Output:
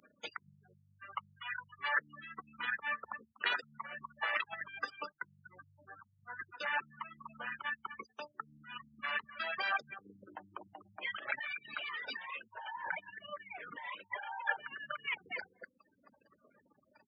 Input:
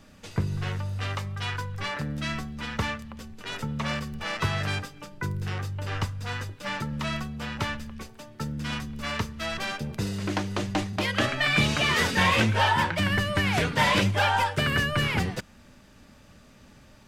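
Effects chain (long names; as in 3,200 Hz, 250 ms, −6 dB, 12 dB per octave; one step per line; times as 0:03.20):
spectral envelope exaggerated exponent 2
slap from a distant wall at 42 metres, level −14 dB
spring reverb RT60 1.4 s, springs 47 ms, chirp 55 ms, DRR 17.5 dB
reverb reduction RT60 0.83 s
0:05.87–0:06.40: low-pass filter 1,300 Hz 6 dB per octave
compressor whose output falls as the input rises −37 dBFS, ratio −1
gate on every frequency bin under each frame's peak −25 dB strong
high-pass filter 950 Hz 12 dB per octave
level +3.5 dB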